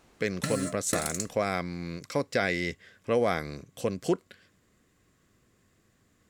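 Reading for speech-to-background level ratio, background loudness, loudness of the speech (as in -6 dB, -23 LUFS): 3.5 dB, -34.5 LUFS, -31.0 LUFS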